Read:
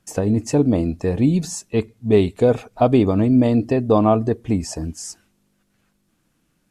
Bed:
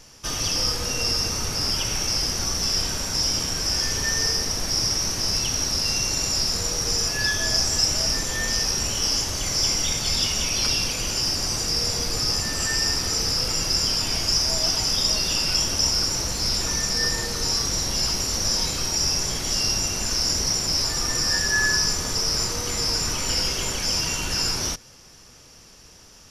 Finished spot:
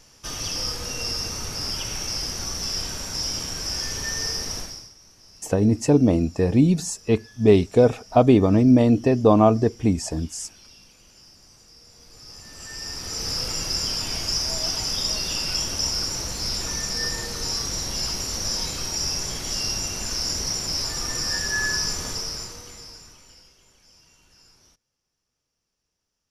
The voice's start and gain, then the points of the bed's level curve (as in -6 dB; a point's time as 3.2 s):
5.35 s, 0.0 dB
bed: 4.59 s -4.5 dB
4.94 s -27 dB
11.87 s -27 dB
13.33 s -3.5 dB
22.08 s -3.5 dB
23.57 s -31.5 dB